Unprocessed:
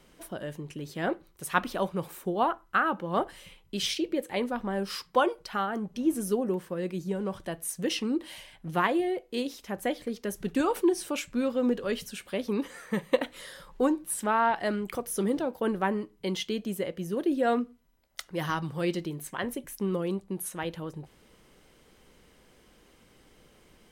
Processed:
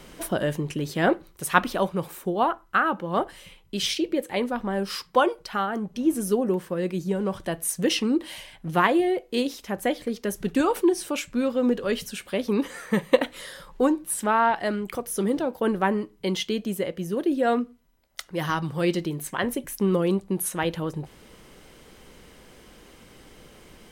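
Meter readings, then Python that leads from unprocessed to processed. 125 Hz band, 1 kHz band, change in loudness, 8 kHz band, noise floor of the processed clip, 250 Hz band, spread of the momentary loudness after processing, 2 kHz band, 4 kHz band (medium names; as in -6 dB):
+6.0 dB, +4.5 dB, +4.5 dB, +5.0 dB, -54 dBFS, +4.5 dB, 8 LU, +5.0 dB, +5.0 dB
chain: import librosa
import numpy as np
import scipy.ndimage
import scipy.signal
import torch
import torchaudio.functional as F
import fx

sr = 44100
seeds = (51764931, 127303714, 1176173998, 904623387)

y = fx.rider(x, sr, range_db=10, speed_s=2.0)
y = F.gain(torch.from_numpy(y), 4.0).numpy()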